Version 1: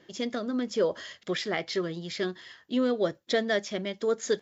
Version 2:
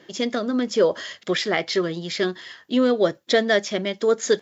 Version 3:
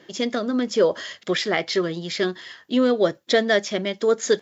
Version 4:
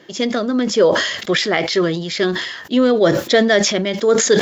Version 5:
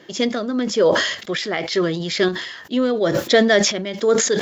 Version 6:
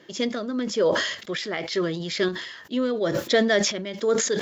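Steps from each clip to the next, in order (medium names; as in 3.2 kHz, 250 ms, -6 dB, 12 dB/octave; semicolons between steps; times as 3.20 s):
high-pass 150 Hz 6 dB/octave; trim +8 dB
no audible change
decay stretcher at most 51 dB/s; trim +4.5 dB
random-step tremolo
band-stop 750 Hz, Q 12; trim -5.5 dB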